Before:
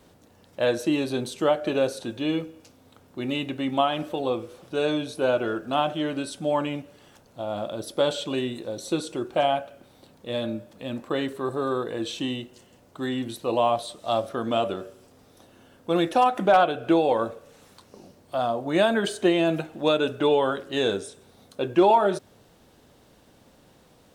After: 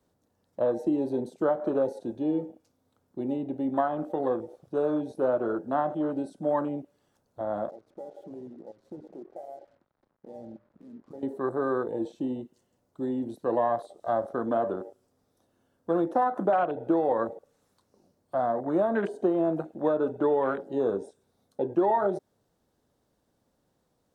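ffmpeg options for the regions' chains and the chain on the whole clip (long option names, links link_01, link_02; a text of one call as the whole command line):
ffmpeg -i in.wav -filter_complex "[0:a]asettb=1/sr,asplit=3[link_01][link_02][link_03];[link_01]atrim=end=7.694[link_04];[link_02]atrim=start=7.69:end=11.23,asetpts=PTS-STARTPTS,afade=type=in:duration=0.004:curve=qsin,afade=type=out:start_time=3.536:duration=0.004:curve=qsin,lowpass=1600,acompressor=threshold=-43dB:ratio=3:attack=3.2:release=140:knee=1:detection=peak,acrusher=bits=7:mix=0:aa=0.5[link_05];[link_03]atrim=start=11.226[link_06];[link_04][link_05]acrossfade=duration=0.004:curve1=hsin:curve2=qsin[link_07];[link_07][link_06]acrossfade=duration=0.004:curve1=qsin:curve2=hsin,acrossover=split=180|1700[link_08][link_09][link_10];[link_08]acompressor=threshold=-50dB:ratio=4[link_11];[link_09]acompressor=threshold=-21dB:ratio=4[link_12];[link_10]acompressor=threshold=-39dB:ratio=4[link_13];[link_11][link_12][link_13]amix=inputs=3:normalize=0,equalizer=frequency=2700:width_type=o:width=1:gain=-7.5,afwtdn=0.02" out.wav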